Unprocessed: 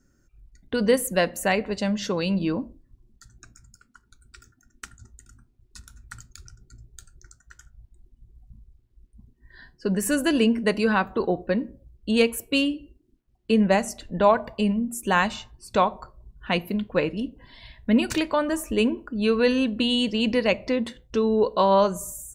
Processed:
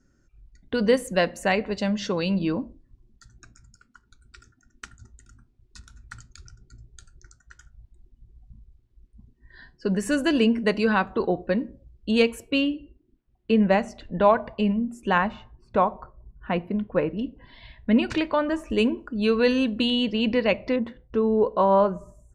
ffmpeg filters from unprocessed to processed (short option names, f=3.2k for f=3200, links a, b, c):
-af "asetnsamples=n=441:p=0,asendcmd='12.51 lowpass f 3300;15.18 lowpass f 1600;17.19 lowpass f 3600;18.7 lowpass f 7900;19.9 lowpass f 3600;20.76 lowpass f 1600',lowpass=6.2k"